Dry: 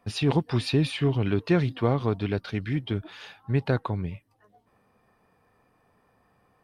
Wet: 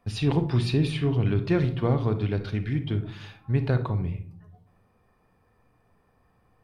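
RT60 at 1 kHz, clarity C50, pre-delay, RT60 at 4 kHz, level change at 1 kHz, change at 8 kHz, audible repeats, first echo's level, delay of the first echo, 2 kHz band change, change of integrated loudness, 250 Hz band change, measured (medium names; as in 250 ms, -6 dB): 0.40 s, 11.5 dB, 32 ms, 0.25 s, -2.5 dB, no reading, no echo, no echo, no echo, -2.5 dB, +0.5 dB, 0.0 dB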